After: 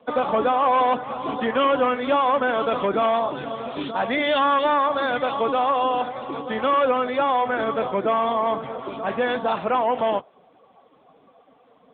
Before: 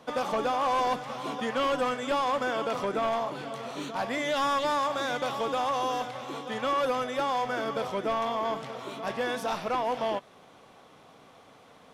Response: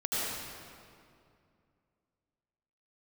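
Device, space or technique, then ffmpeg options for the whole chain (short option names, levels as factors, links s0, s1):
mobile call with aggressive noise cancelling: -filter_complex "[0:a]asettb=1/sr,asplit=3[s0][s1][s2];[s0]atrim=end=2.604[s3];[s1]atrim=start=2.6:end=4.39,asetpts=PTS-STARTPTS,afade=t=in:d=0.004:c=qsin,afade=t=out:st=1.786:d=0.004:c=qsin,equalizer=f=3800:w=2.2:g=5[s4];[s2]atrim=start=4.386[s5];[s3][s4]acrossfade=d=0.004:c1=hsin:c2=qsin[s6];[s6][s5]acrossfade=d=0.004:c1=qsin:c2=hsin,highpass=f=130:w=0.5412,highpass=f=130:w=1.3066,afftdn=nr=13:nf=-45,volume=2.51" -ar 8000 -c:a libopencore_amrnb -b:a 10200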